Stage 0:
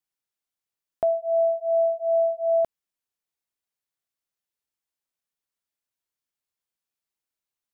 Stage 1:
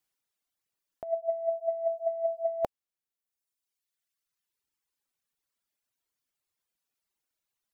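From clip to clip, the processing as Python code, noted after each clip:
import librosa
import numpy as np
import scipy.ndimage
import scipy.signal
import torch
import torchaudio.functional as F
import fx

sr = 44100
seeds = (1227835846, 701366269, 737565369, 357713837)

y = fx.dereverb_blind(x, sr, rt60_s=1.8)
y = fx.over_compress(y, sr, threshold_db=-28.0, ratio=-0.5)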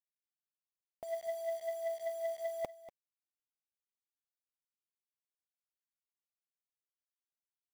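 y = 10.0 ** (-25.5 / 20.0) * np.tanh(x / 10.0 ** (-25.5 / 20.0))
y = fx.quant_dither(y, sr, seeds[0], bits=8, dither='none')
y = y + 10.0 ** (-15.5 / 20.0) * np.pad(y, (int(240 * sr / 1000.0), 0))[:len(y)]
y = F.gain(torch.from_numpy(y), -5.5).numpy()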